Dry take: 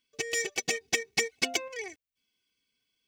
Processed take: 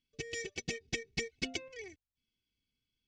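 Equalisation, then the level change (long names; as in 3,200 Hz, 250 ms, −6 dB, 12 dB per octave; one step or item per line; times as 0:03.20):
high-frequency loss of the air 120 metres
guitar amp tone stack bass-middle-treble 10-0-1
+17.0 dB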